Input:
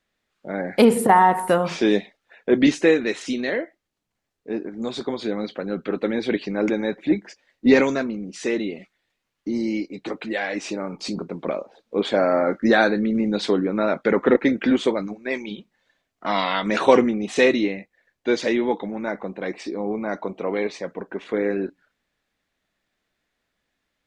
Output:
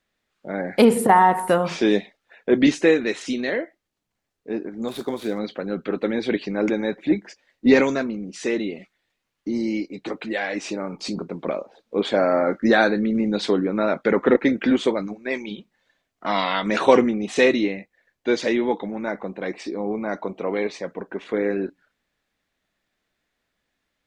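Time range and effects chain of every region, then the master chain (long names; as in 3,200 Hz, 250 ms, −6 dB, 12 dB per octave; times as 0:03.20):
0:04.88–0:05.39: running median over 9 samples + bass and treble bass −1 dB, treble +8 dB + linearly interpolated sample-rate reduction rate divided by 2×
whole clip: no processing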